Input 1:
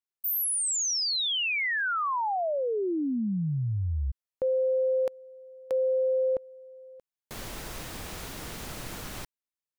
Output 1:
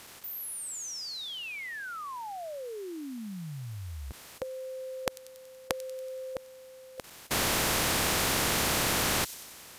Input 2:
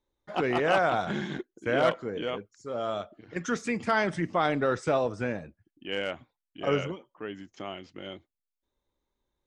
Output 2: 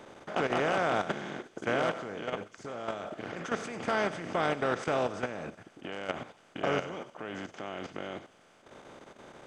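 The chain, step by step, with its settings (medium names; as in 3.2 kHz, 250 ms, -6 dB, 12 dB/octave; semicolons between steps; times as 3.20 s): spectral levelling over time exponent 0.4; level held to a coarse grid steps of 11 dB; feedback echo behind a high-pass 94 ms, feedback 60%, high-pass 4.8 kHz, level -11 dB; trim -6 dB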